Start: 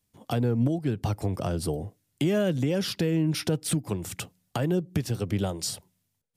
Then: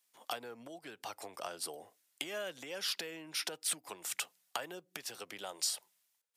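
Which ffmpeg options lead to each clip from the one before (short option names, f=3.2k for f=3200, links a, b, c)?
-af "acompressor=threshold=-35dB:ratio=2,highpass=890,volume=2dB"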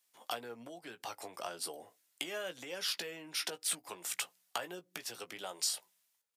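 -filter_complex "[0:a]asplit=2[a][b];[b]adelay=17,volume=-9dB[c];[a][c]amix=inputs=2:normalize=0"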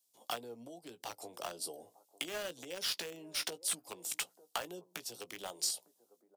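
-filter_complex "[0:a]acrossover=split=190|880|3200[a][b][c][d];[b]aecho=1:1:902:0.15[e];[c]acrusher=bits=6:mix=0:aa=0.000001[f];[a][e][f][d]amix=inputs=4:normalize=0"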